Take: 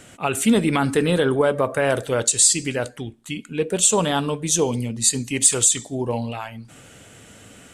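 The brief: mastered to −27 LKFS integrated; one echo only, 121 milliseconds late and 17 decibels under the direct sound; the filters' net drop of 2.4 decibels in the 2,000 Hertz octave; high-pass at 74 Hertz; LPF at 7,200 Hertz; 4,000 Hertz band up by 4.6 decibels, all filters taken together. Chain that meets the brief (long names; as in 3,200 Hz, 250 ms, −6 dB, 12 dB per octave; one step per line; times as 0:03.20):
high-pass filter 74 Hz
low-pass filter 7,200 Hz
parametric band 2,000 Hz −5.5 dB
parametric band 4,000 Hz +7.5 dB
single-tap delay 121 ms −17 dB
level −7 dB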